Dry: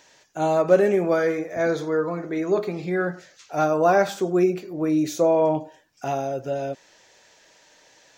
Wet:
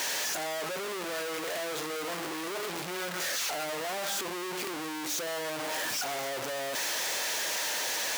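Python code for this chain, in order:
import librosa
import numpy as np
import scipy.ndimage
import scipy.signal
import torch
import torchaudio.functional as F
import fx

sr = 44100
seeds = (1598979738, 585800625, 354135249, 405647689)

y = np.sign(x) * np.sqrt(np.mean(np.square(x)))
y = fx.highpass(y, sr, hz=600.0, slope=6)
y = F.gain(torch.from_numpy(y), -8.0).numpy()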